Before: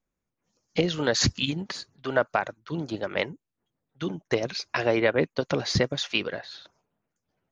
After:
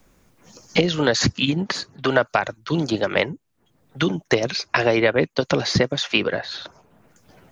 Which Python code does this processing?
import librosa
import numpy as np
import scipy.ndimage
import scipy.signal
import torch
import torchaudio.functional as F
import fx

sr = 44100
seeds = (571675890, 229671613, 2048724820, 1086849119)

y = fx.band_squash(x, sr, depth_pct=70)
y = y * 10.0 ** (6.0 / 20.0)